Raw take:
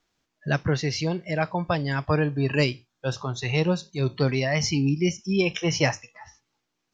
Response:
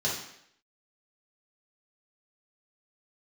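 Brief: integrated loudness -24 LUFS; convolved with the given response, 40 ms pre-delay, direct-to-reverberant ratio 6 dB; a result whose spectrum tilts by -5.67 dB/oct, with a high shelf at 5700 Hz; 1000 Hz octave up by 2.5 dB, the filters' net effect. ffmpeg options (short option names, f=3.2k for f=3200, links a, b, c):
-filter_complex "[0:a]equalizer=f=1k:t=o:g=3.5,highshelf=f=5.7k:g=-6.5,asplit=2[a][b];[1:a]atrim=start_sample=2205,adelay=40[c];[b][c]afir=irnorm=-1:irlink=0,volume=-14.5dB[d];[a][d]amix=inputs=2:normalize=0,volume=-0.5dB"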